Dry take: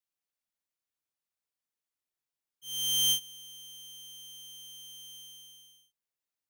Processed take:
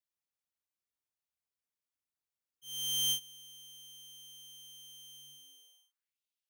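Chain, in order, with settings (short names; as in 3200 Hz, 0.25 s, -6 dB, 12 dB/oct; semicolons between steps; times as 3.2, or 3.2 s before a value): high-pass sweep 60 Hz -> 3000 Hz, 5.07–6.2; gain -5 dB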